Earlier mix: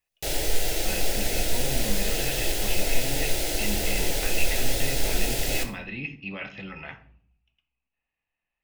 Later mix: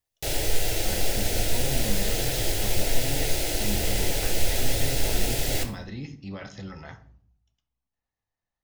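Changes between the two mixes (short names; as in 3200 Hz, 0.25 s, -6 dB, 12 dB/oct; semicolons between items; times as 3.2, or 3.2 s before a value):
speech: remove synth low-pass 2600 Hz, resonance Q 9.4; master: add bell 95 Hz +11 dB 0.52 oct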